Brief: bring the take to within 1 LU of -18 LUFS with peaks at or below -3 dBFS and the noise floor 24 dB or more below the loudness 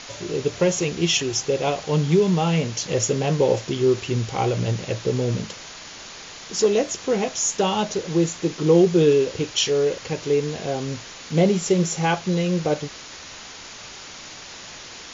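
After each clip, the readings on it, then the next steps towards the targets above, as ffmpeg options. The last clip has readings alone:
noise floor -40 dBFS; noise floor target -46 dBFS; loudness -22.0 LUFS; peak level -5.0 dBFS; loudness target -18.0 LUFS
-> -af "afftdn=nr=6:nf=-40"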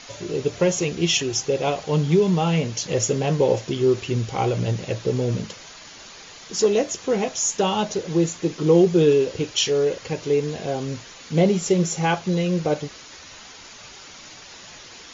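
noise floor -43 dBFS; noise floor target -46 dBFS
-> -af "afftdn=nr=6:nf=-43"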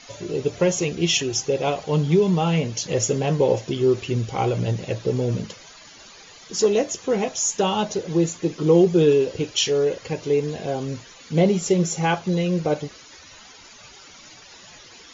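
noise floor -46 dBFS; loudness -22.0 LUFS; peak level -5.0 dBFS; loudness target -18.0 LUFS
-> -af "volume=1.58,alimiter=limit=0.708:level=0:latency=1"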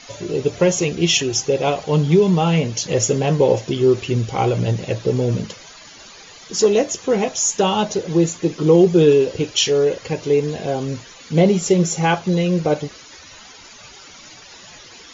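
loudness -18.0 LUFS; peak level -3.0 dBFS; noise floor -42 dBFS

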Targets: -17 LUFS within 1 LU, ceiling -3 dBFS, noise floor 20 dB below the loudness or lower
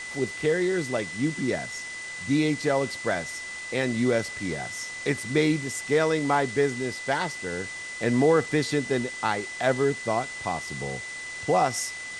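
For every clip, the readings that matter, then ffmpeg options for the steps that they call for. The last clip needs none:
steady tone 2 kHz; tone level -35 dBFS; noise floor -37 dBFS; noise floor target -47 dBFS; loudness -26.5 LUFS; peak level -10.0 dBFS; loudness target -17.0 LUFS
-> -af "bandreject=f=2000:w=30"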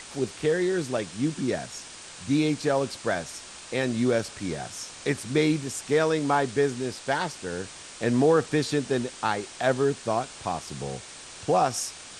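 steady tone not found; noise floor -44 dBFS; noise floor target -47 dBFS
-> -af "afftdn=nr=6:nf=-44"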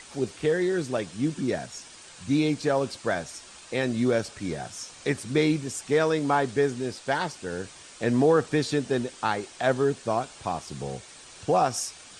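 noise floor -48 dBFS; loudness -27.0 LUFS; peak level -10.0 dBFS; loudness target -17.0 LUFS
-> -af "volume=3.16,alimiter=limit=0.708:level=0:latency=1"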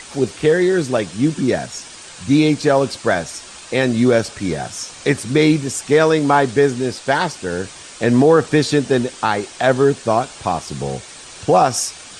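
loudness -17.5 LUFS; peak level -3.0 dBFS; noise floor -38 dBFS

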